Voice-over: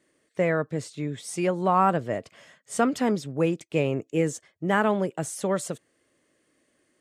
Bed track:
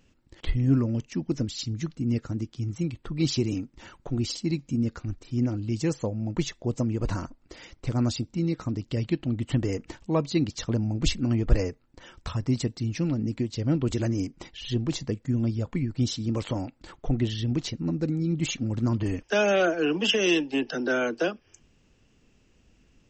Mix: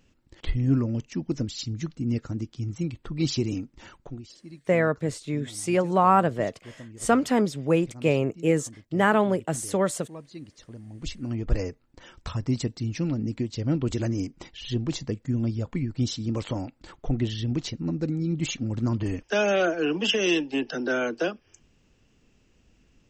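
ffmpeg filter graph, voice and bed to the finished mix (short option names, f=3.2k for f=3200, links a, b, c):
-filter_complex "[0:a]adelay=4300,volume=2dB[a];[1:a]volume=16dB,afade=t=out:st=3.93:d=0.29:silence=0.149624,afade=t=in:st=10.84:d=1.03:silence=0.149624[b];[a][b]amix=inputs=2:normalize=0"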